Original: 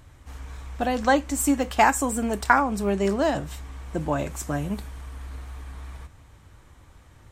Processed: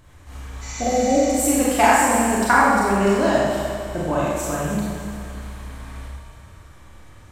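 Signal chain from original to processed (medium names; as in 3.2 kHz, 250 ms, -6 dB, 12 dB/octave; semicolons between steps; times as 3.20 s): spectral replace 0.64–1.25 s, 790–7700 Hz after; multi-head delay 100 ms, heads first and third, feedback 61%, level -14 dB; Schroeder reverb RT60 1.2 s, combs from 30 ms, DRR -5.5 dB; trim -1 dB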